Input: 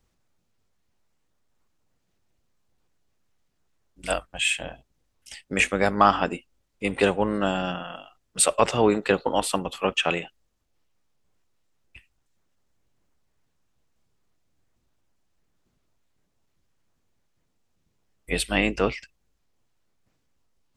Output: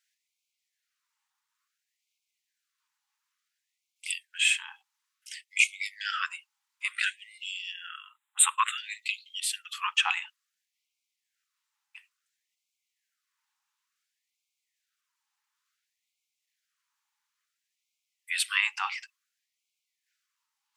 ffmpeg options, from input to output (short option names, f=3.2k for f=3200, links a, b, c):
-filter_complex "[0:a]asettb=1/sr,asplit=3[a][b][c];[a]atrim=end=7.884[d];[b]atrim=start=7.88:end=8.78,asetpts=PTS-STARTPTS,afade=t=in:d=0.004:c=qsin,afade=t=out:st=0.896:d=0.004:c=qsin,asuperstop=centerf=5300:order=12:qfactor=1.7[e];[c]atrim=start=8.776[f];[d][e]acrossfade=d=0.004:c1=hsin:c2=qsin[g];[g][f]acrossfade=d=0.004:c1=qsin:c2=hsin,afftfilt=real='re*gte(b*sr/1024,770*pow(2100/770,0.5+0.5*sin(2*PI*0.57*pts/sr)))':imag='im*gte(b*sr/1024,770*pow(2100/770,0.5+0.5*sin(2*PI*0.57*pts/sr)))':win_size=1024:overlap=0.75"